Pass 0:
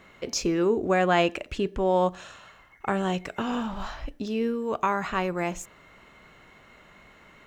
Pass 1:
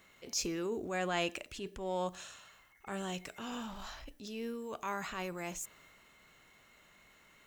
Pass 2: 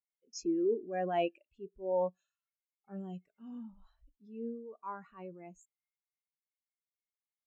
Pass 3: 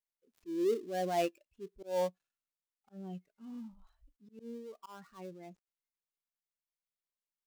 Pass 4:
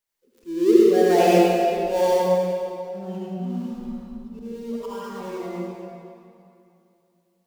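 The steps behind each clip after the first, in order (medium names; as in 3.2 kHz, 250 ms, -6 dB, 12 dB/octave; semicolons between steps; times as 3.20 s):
pre-emphasis filter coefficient 0.8; transient shaper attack -7 dB, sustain +3 dB; trim +1 dB
spectral contrast expander 2.5:1
dead-time distortion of 0.11 ms; slow attack 171 ms
reverberation RT60 2.7 s, pre-delay 65 ms, DRR -7.5 dB; trim +8.5 dB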